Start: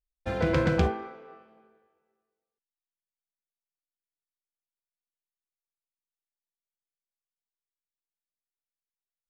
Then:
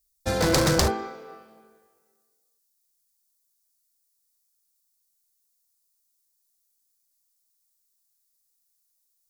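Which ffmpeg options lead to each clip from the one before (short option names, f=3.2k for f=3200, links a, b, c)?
-af "aeval=exprs='0.0891*(abs(mod(val(0)/0.0891+3,4)-2)-1)':c=same,aexciter=amount=5.4:drive=6.6:freq=4.1k,volume=5dB"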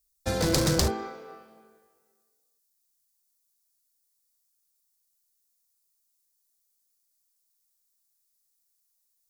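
-filter_complex "[0:a]acrossover=split=460|3000[a][b][c];[b]acompressor=threshold=-30dB:ratio=6[d];[a][d][c]amix=inputs=3:normalize=0,volume=-1.5dB"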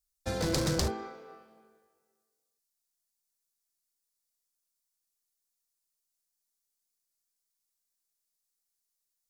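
-af "highshelf=f=11k:g=-7,volume=-5dB"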